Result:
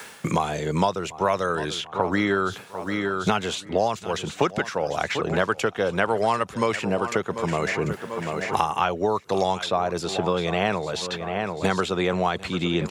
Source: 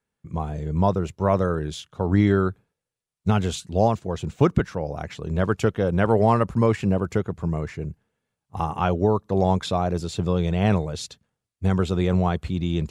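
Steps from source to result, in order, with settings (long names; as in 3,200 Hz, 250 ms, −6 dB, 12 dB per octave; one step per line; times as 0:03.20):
high-pass filter 1,100 Hz 6 dB per octave
high-shelf EQ 8,400 Hz −4.5 dB
reversed playback
upward compression, threshold −34 dBFS
reversed playback
repeating echo 741 ms, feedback 28%, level −17 dB
multiband upward and downward compressor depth 100%
level +7 dB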